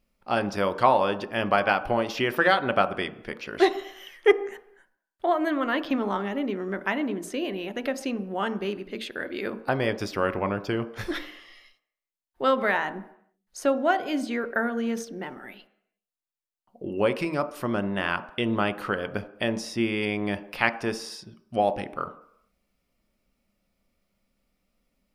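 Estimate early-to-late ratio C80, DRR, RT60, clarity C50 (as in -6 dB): 17.5 dB, 10.0 dB, 0.70 s, 15.0 dB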